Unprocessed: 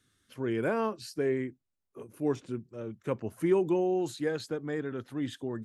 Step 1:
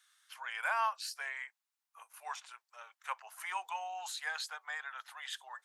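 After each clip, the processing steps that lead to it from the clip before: de-esser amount 100%; steep high-pass 790 Hz 48 dB/octave; trim +4 dB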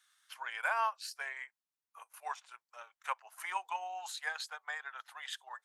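transient shaper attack +4 dB, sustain -6 dB; bass shelf 460 Hz +8.5 dB; trim -2 dB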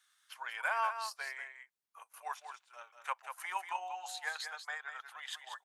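delay 190 ms -8 dB; trim -1 dB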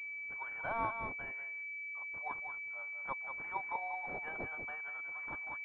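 class-D stage that switches slowly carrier 2.3 kHz; trim +1 dB

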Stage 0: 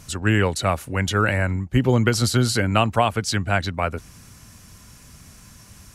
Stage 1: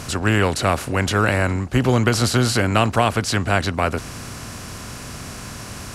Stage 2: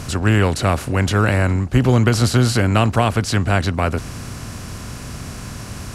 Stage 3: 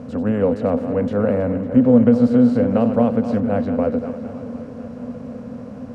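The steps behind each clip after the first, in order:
spectral levelling over time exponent 0.6; trim -1 dB
bass shelf 240 Hz +7 dB; trim -1 dB
backward echo that repeats 158 ms, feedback 44%, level -9.5 dB; two resonant band-passes 350 Hz, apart 1 oct; shuffle delay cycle 738 ms, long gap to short 3:1, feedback 54%, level -17 dB; trim +9 dB

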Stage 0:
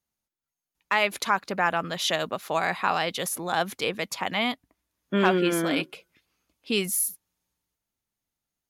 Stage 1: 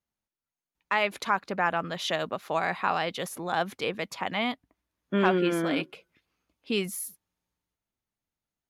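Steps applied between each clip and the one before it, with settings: treble shelf 4.7 kHz -10 dB; trim -1.5 dB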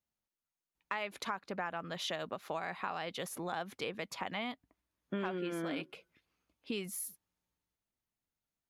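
compression 4:1, threshold -32 dBFS, peak gain reduction 12.5 dB; trim -3.5 dB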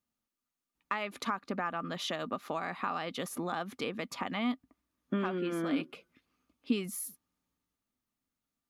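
small resonant body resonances 250/1200 Hz, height 11 dB, ringing for 45 ms; trim +1.5 dB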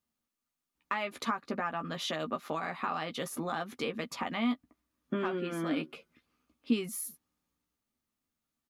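doubling 13 ms -6.5 dB

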